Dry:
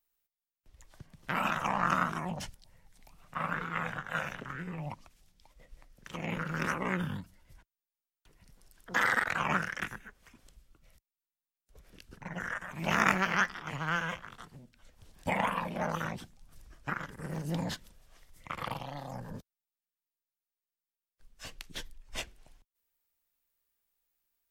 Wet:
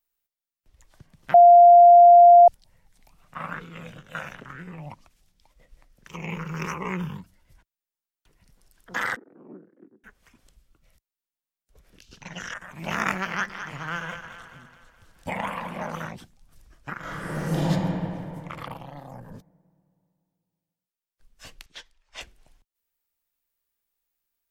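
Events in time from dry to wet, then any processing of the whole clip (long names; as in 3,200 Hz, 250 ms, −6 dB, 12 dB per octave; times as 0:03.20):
0:01.34–0:02.48: beep over 697 Hz −7.5 dBFS
0:03.60–0:04.15: flat-topped bell 1,200 Hz −13.5 dB
0:06.08–0:07.22: EQ curve with evenly spaced ripples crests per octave 0.77, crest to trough 10 dB
0:09.16–0:10.04: flat-topped band-pass 320 Hz, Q 2
0:12.01–0:12.54: flat-topped bell 4,200 Hz +15 dB
0:13.29–0:16.06: echo with a time of its own for lows and highs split 430 Hz, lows 92 ms, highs 212 ms, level −9 dB
0:17.00–0:17.69: thrown reverb, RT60 2.7 s, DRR −11.5 dB
0:18.66–0:19.32: parametric band 5,000 Hz −9 dB 1.7 octaves
0:21.66–0:22.21: three-way crossover with the lows and the highs turned down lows −16 dB, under 520 Hz, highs −19 dB, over 7,100 Hz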